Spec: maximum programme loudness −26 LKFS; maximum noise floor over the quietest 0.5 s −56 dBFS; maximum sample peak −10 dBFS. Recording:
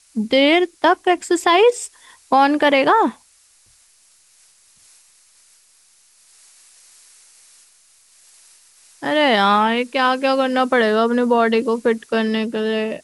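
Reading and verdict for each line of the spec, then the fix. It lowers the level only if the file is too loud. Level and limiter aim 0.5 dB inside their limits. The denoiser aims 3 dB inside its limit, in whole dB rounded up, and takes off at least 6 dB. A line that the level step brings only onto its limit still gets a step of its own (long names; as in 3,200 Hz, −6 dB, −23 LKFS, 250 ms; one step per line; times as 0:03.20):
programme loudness −17.0 LKFS: out of spec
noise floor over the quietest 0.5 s −55 dBFS: out of spec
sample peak −5.5 dBFS: out of spec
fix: level −9.5 dB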